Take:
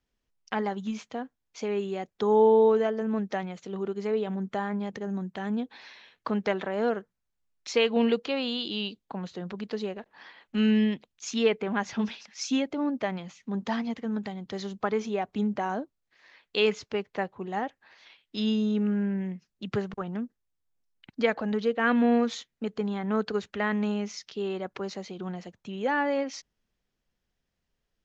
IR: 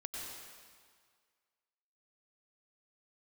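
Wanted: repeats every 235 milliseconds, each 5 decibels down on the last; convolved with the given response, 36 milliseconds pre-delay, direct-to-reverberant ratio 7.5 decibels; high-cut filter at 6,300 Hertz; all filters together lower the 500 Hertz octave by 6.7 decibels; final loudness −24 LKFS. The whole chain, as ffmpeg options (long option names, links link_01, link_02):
-filter_complex "[0:a]lowpass=6300,equalizer=frequency=500:width_type=o:gain=-8,aecho=1:1:235|470|705|940|1175|1410|1645:0.562|0.315|0.176|0.0988|0.0553|0.031|0.0173,asplit=2[link_01][link_02];[1:a]atrim=start_sample=2205,adelay=36[link_03];[link_02][link_03]afir=irnorm=-1:irlink=0,volume=-7dB[link_04];[link_01][link_04]amix=inputs=2:normalize=0,volume=6dB"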